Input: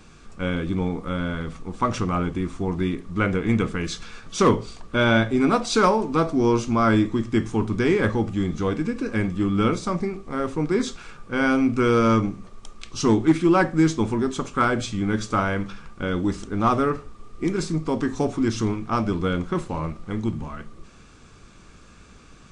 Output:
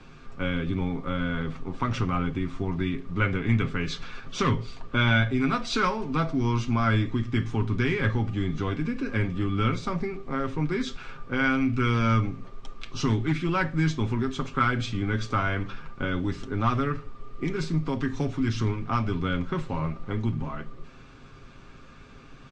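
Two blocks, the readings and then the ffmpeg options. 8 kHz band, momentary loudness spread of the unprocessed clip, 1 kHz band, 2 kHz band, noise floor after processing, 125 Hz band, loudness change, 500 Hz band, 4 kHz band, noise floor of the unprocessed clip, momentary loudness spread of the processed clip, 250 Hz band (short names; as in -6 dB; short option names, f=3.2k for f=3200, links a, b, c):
-9.0 dB, 11 LU, -5.0 dB, -1.0 dB, -47 dBFS, +0.5 dB, -4.5 dB, -8.5 dB, -2.0 dB, -48 dBFS, 9 LU, -5.5 dB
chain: -filter_complex "[0:a]lowpass=3.8k,aecho=1:1:7.5:0.51,acrossover=split=190|1400[a][b][c];[b]acompressor=threshold=-31dB:ratio=5[d];[a][d][c]amix=inputs=3:normalize=0"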